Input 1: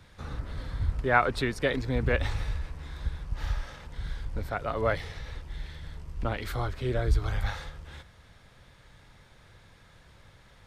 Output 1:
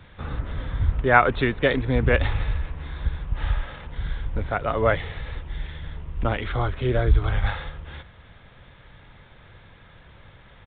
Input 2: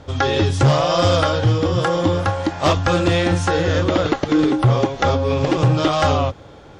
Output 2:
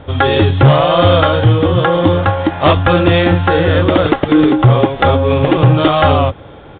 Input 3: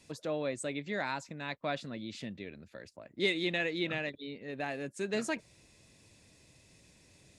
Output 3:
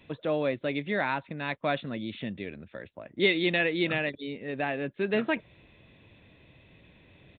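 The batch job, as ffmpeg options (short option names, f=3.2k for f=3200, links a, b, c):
-af "aresample=8000,aresample=44100,volume=6.5dB"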